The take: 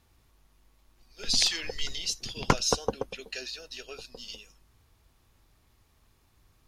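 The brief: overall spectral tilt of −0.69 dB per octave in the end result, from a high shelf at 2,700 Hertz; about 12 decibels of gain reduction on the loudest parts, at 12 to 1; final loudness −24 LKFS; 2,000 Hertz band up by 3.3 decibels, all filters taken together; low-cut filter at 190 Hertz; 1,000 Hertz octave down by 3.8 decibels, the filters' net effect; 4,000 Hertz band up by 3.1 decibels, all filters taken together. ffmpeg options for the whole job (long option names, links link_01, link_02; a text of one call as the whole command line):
ffmpeg -i in.wav -af "highpass=190,equalizer=frequency=1000:width_type=o:gain=-6,equalizer=frequency=2000:width_type=o:gain=6,highshelf=frequency=2700:gain=-6,equalizer=frequency=4000:width_type=o:gain=8,acompressor=threshold=-30dB:ratio=12,volume=11.5dB" out.wav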